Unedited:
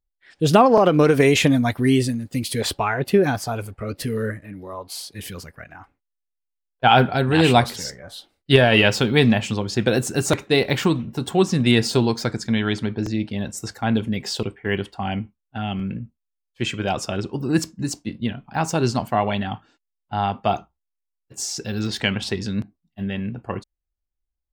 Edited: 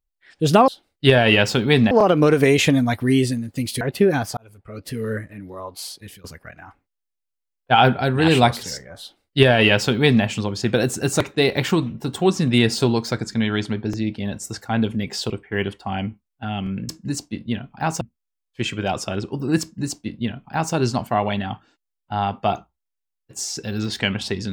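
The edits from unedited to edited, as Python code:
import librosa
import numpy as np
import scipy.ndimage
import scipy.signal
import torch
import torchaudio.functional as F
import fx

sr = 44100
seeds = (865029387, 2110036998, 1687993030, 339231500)

y = fx.edit(x, sr, fx.cut(start_s=2.58, length_s=0.36),
    fx.fade_in_span(start_s=3.5, length_s=0.8),
    fx.fade_out_to(start_s=5.04, length_s=0.33, floor_db=-21.5),
    fx.duplicate(start_s=8.14, length_s=1.23, to_s=0.68),
    fx.duplicate(start_s=17.63, length_s=1.12, to_s=16.02), tone=tone)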